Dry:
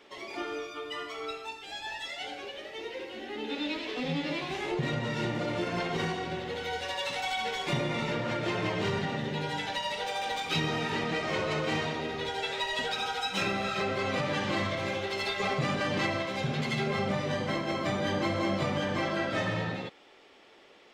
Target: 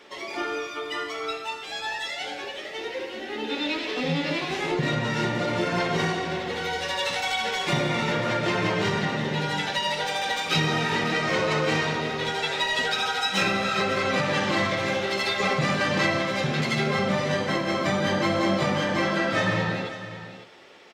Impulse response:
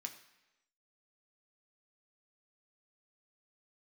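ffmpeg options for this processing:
-filter_complex "[0:a]aecho=1:1:549:0.224,asplit=2[a][b];[1:a]atrim=start_sample=2205,asetrate=31311,aresample=44100[c];[b][c]afir=irnorm=-1:irlink=0,volume=-2.5dB[d];[a][d]amix=inputs=2:normalize=0,volume=3dB"

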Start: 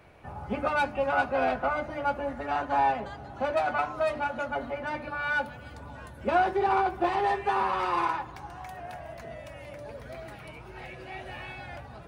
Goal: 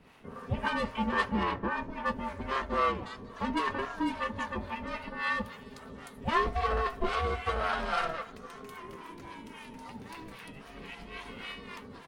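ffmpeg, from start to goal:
-filter_complex "[0:a]aeval=exprs='val(0)*sin(2*PI*330*n/s)':c=same,firequalizer=gain_entry='entry(170,0);entry(390,-5);entry(3600,3)':delay=0.05:min_phase=1,acrossover=split=580[a][b];[a]aeval=exprs='val(0)*(1-0.7/2+0.7/2*cos(2*PI*3.7*n/s))':c=same[c];[b]aeval=exprs='val(0)*(1-0.7/2-0.7/2*cos(2*PI*3.7*n/s))':c=same[d];[c][d]amix=inputs=2:normalize=0,asettb=1/sr,asplit=3[e][f][g];[e]atrim=end=1.434[h];[f]atrim=start=1.43:end=2.06,asetpts=PTS-STARTPTS,afade=t=in:d=0.004:c=qsin,afade=t=out:st=0.626:d=0.004:c=qsin,highshelf=f=3.4k:g=-10.5[i];[g]atrim=start=2.056[j];[h][i]acrossfade=d=0.004:c1=hsin:c2=qsin[k];[k][j]acrossfade=d=0.004:c1=qsin:c2=hsin,volume=5.5dB"

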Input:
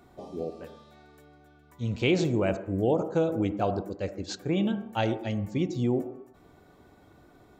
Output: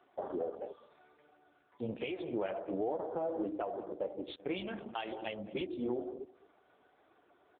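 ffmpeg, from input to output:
-filter_complex "[0:a]highpass=440,flanger=delay=2.5:depth=8.8:regen=-23:speed=1.4:shape=sinusoidal,asplit=3[a][b][c];[a]afade=t=out:st=4.33:d=0.02[d];[b]highshelf=f=3.1k:g=10.5,afade=t=in:st=4.33:d=0.02,afade=t=out:st=5.91:d=0.02[e];[c]afade=t=in:st=5.91:d=0.02[f];[d][e][f]amix=inputs=3:normalize=0,afwtdn=0.00501,acompressor=threshold=-51dB:ratio=3,aecho=1:1:210:0.0841,asplit=3[g][h][i];[g]afade=t=out:st=2.35:d=0.02[j];[h]adynamicequalizer=threshold=0.00112:dfrequency=760:dqfactor=1.6:tfrequency=760:tqfactor=1.6:attack=5:release=100:ratio=0.375:range=2:mode=boostabove:tftype=bell,afade=t=in:st=2.35:d=0.02,afade=t=out:st=3.46:d=0.02[k];[i]afade=t=in:st=3.46:d=0.02[l];[j][k][l]amix=inputs=3:normalize=0,alimiter=level_in=16dB:limit=-24dB:level=0:latency=1:release=411,volume=-16dB,volume=15.5dB" -ar 8000 -c:a libopencore_amrnb -b:a 6700

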